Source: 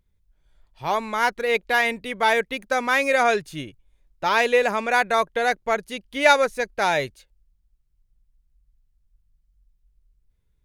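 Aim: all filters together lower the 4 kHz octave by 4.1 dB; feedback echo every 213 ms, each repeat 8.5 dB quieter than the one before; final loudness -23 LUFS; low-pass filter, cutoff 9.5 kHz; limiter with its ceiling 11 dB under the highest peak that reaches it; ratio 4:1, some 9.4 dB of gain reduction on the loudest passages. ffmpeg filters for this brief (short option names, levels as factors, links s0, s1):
-af "lowpass=9500,equalizer=f=4000:t=o:g=-5,acompressor=threshold=0.0794:ratio=4,alimiter=limit=0.075:level=0:latency=1,aecho=1:1:213|426|639|852:0.376|0.143|0.0543|0.0206,volume=2.82"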